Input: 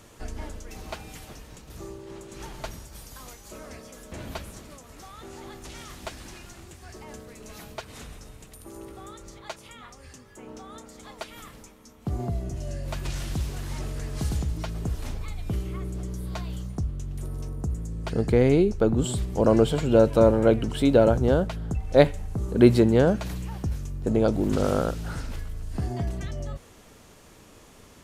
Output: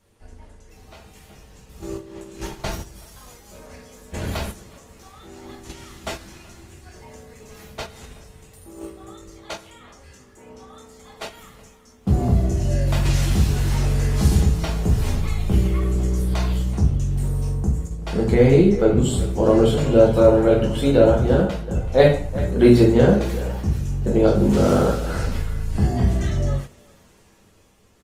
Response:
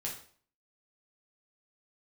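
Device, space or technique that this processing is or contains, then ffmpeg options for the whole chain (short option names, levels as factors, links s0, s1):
speakerphone in a meeting room: -filter_complex "[1:a]atrim=start_sample=2205[s0];[0:a][s0]afir=irnorm=-1:irlink=0,asplit=2[s1][s2];[s2]adelay=380,highpass=300,lowpass=3400,asoftclip=type=hard:threshold=0.251,volume=0.2[s3];[s1][s3]amix=inputs=2:normalize=0,dynaudnorm=f=250:g=11:m=2.66,agate=range=0.316:threshold=0.0398:ratio=16:detection=peak" -ar 48000 -c:a libopus -b:a 24k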